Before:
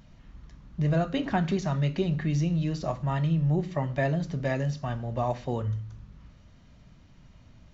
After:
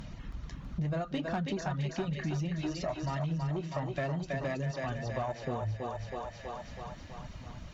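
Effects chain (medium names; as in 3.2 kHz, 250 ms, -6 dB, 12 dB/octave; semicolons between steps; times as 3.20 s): reverb removal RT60 1 s; 2.54–3.09 s: comb 3.1 ms, depth 45%; thinning echo 324 ms, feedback 62%, high-pass 400 Hz, level -4.5 dB; Chebyshev shaper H 5 -19 dB, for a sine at -14 dBFS; compression 3:1, threshold -44 dBFS, peak gain reduction 16.5 dB; trim +7 dB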